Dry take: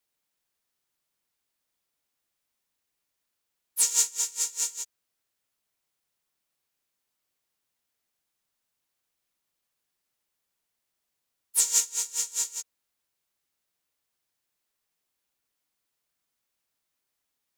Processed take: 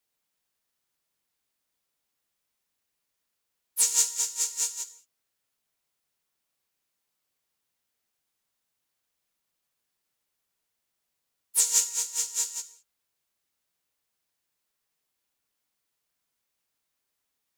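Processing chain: non-linear reverb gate 0.23 s falling, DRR 10 dB

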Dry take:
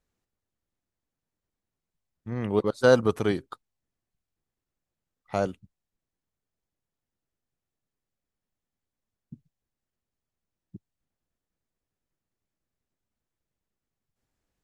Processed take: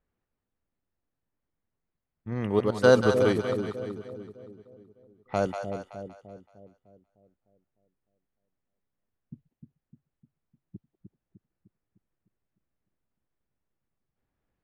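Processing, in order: low-pass opened by the level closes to 2300 Hz, open at -25 dBFS; split-band echo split 580 Hz, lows 0.303 s, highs 0.189 s, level -6 dB

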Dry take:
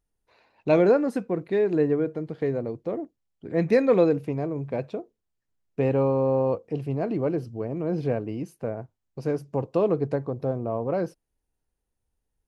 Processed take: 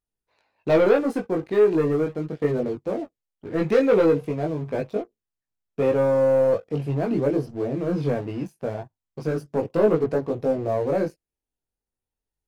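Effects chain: low shelf 140 Hz -5.5 dB; sample leveller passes 2; chorus voices 2, 0.2 Hz, delay 20 ms, depth 1.3 ms

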